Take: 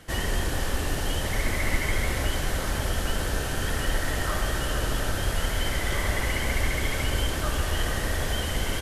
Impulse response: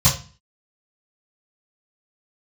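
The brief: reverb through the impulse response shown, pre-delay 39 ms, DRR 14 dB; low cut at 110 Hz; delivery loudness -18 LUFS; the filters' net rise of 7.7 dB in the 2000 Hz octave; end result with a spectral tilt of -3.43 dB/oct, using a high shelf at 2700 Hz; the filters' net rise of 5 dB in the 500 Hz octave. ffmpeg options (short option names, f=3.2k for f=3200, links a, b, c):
-filter_complex "[0:a]highpass=110,equalizer=f=500:t=o:g=5.5,equalizer=f=2k:t=o:g=6.5,highshelf=f=2.7k:g=5.5,asplit=2[a][b];[1:a]atrim=start_sample=2205,adelay=39[c];[b][c]afir=irnorm=-1:irlink=0,volume=-31.5dB[d];[a][d]amix=inputs=2:normalize=0,volume=5.5dB"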